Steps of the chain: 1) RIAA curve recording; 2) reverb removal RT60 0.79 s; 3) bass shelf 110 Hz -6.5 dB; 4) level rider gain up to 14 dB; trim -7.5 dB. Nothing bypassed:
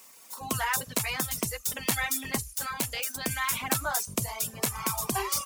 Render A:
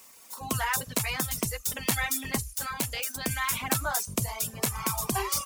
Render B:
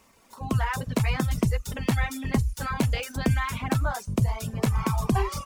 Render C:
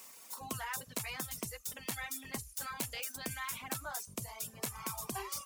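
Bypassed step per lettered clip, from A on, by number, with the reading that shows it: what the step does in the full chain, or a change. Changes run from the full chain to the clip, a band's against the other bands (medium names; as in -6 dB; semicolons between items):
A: 3, 125 Hz band +3.0 dB; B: 1, 125 Hz band +13.5 dB; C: 4, momentary loudness spread change -2 LU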